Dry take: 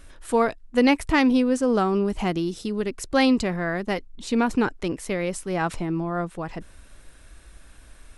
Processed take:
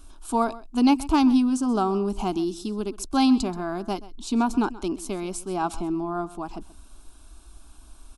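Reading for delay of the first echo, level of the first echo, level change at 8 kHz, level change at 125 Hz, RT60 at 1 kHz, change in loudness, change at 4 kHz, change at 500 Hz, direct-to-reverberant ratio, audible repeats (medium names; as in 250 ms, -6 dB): 130 ms, -18.0 dB, +1.0 dB, -5.0 dB, no reverb, -1.0 dB, -2.0 dB, -5.0 dB, no reverb, 1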